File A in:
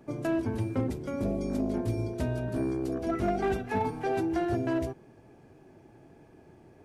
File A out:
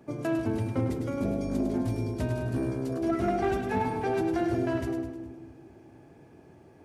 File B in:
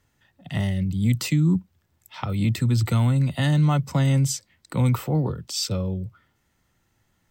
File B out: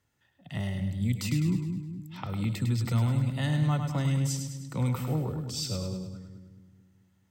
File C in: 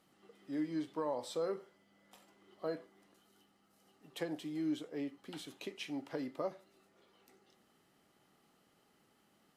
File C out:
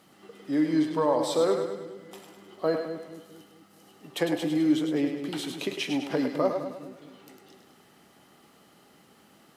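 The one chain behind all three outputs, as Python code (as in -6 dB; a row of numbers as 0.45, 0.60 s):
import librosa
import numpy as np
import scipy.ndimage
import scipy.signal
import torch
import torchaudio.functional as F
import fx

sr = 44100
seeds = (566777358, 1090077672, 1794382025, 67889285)

y = scipy.signal.sosfilt(scipy.signal.butter(2, 51.0, 'highpass', fs=sr, output='sos'), x)
y = fx.echo_split(y, sr, split_hz=340.0, low_ms=218, high_ms=103, feedback_pct=52, wet_db=-6.5)
y = y * 10.0 ** (-30 / 20.0) / np.sqrt(np.mean(np.square(y)))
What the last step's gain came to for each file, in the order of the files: 0.0, -7.5, +12.5 dB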